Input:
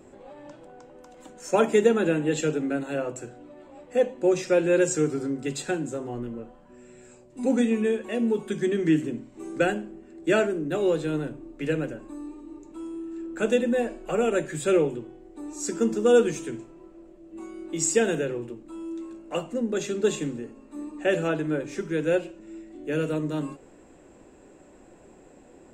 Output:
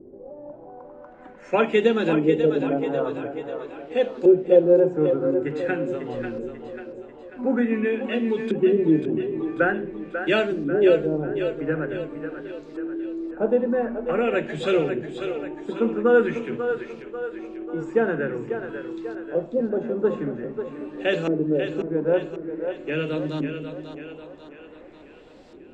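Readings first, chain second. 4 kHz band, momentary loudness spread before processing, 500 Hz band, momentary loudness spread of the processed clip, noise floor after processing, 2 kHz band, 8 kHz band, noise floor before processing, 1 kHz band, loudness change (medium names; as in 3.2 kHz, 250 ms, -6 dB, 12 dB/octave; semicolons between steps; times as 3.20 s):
+1.5 dB, 18 LU, +3.5 dB, 17 LU, -46 dBFS, +3.5 dB, under -20 dB, -52 dBFS, +2.5 dB, +2.0 dB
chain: word length cut 10-bit, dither none; LFO low-pass saw up 0.47 Hz 360–4800 Hz; two-band feedback delay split 320 Hz, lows 223 ms, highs 542 ms, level -8 dB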